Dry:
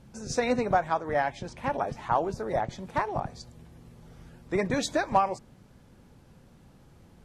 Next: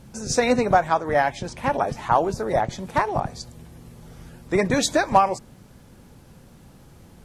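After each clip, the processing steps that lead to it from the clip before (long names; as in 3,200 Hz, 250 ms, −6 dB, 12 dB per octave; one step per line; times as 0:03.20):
high-shelf EQ 7,400 Hz +8.5 dB
level +6.5 dB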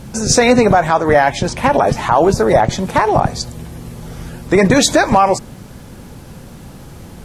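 boost into a limiter +14.5 dB
level −1 dB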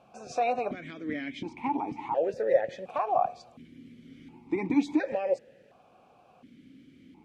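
formant filter that steps through the vowels 1.4 Hz
level −6 dB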